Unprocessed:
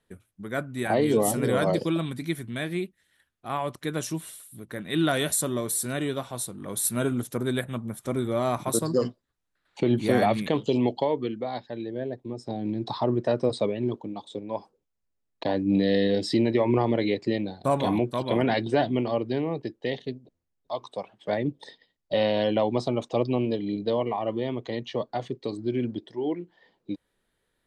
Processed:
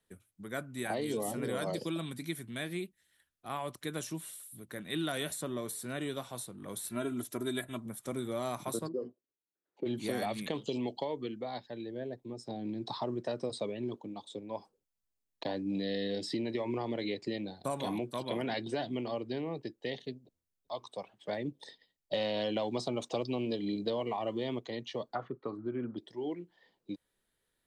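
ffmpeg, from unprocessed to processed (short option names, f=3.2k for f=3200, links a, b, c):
-filter_complex "[0:a]asettb=1/sr,asplit=3[a][b][c];[a]atrim=end=6.894[d];[b]atrim=start=6.89:end=7.86,asetpts=PTS-STARTPTS,afade=t=in:d=0.004:c=qsin,afade=t=out:st=0.966:d=0.004:c=qsin,aecho=1:1:3:0.65,atrim=end_sample=42777[e];[c]atrim=start=7.856[f];[d][e]acrossfade=d=0.004:c1=hsin:c2=qsin[g];[g][f]acrossfade=d=0.004:c1=qsin:c2=hsin,asplit=3[h][i][j];[h]afade=t=out:st=8.87:d=0.02[k];[i]bandpass=f=380:t=q:w=2.1,afade=t=in:st=8.87:d=0.02,afade=t=out:st=9.85:d=0.02[l];[j]afade=t=in:st=9.85:d=0.02[m];[k][l][m]amix=inputs=3:normalize=0,asettb=1/sr,asplit=3[n][o][p];[n]atrim=end=22.134[q];[o]atrim=start=22.13:end=24.59,asetpts=PTS-STARTPTS,afade=t=in:d=0.004:c=qsin,afade=t=out:st=2.456:d=0.004:c=qsin,acontrast=64[r];[p]atrim=start=24.586[s];[q][r]acrossfade=d=0.004:c1=hsin:c2=qsin[t];[t][s]acrossfade=d=0.004:c1=qsin:c2=hsin,asettb=1/sr,asplit=3[u][v][w];[u]atrim=end=25.154[x];[v]atrim=start=25.15:end=25.97,asetpts=PTS-STARTPTS,afade=t=in:d=0.004:c=qsin,afade=t=out:st=0.816:d=0.004:c=qsin,lowpass=f=1.3k:t=q:w=7.9[y];[w]atrim=start=25.966[z];[x][y]acrossfade=d=0.004:c1=hsin:c2=qsin[aa];[aa][z]acrossfade=d=0.004:c1=qsin:c2=hsin,highshelf=f=4.1k:g=8,acrossover=split=120|3500[ab][ac][ad];[ab]acompressor=threshold=-51dB:ratio=4[ae];[ac]acompressor=threshold=-24dB:ratio=4[af];[ad]acompressor=threshold=-36dB:ratio=4[ag];[ae][af][ag]amix=inputs=3:normalize=0,volume=-7.5dB"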